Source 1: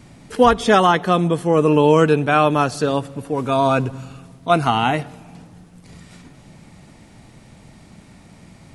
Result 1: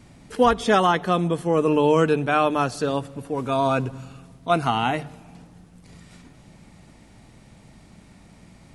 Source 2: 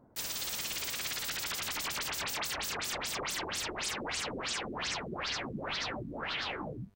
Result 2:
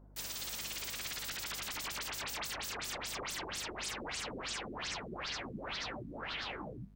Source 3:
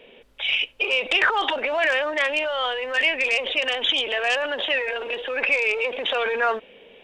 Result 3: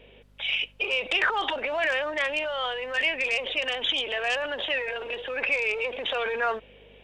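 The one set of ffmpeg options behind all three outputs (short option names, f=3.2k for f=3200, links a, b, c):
-af "bandreject=f=50:t=h:w=6,bandreject=f=100:t=h:w=6,bandreject=f=150:t=h:w=6,aeval=exprs='val(0)+0.00251*(sin(2*PI*50*n/s)+sin(2*PI*2*50*n/s)/2+sin(2*PI*3*50*n/s)/3+sin(2*PI*4*50*n/s)/4+sin(2*PI*5*50*n/s)/5)':c=same,volume=-4.5dB"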